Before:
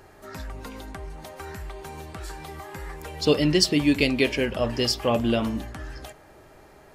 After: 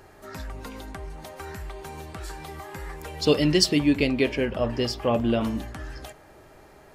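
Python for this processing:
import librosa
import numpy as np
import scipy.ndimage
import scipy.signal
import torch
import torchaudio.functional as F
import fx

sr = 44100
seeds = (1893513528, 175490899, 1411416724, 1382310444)

y = fx.high_shelf(x, sr, hz=3000.0, db=-9.5, at=(3.79, 5.41))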